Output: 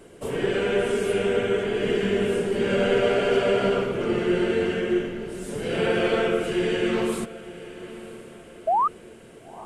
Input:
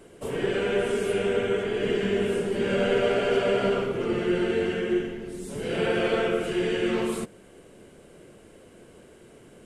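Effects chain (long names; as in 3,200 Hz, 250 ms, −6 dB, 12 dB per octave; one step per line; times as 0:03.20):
sound drawn into the spectrogram rise, 0:08.67–0:08.88, 620–1,300 Hz −22 dBFS
feedback delay with all-pass diffusion 995 ms, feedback 41%, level −16 dB
level +2 dB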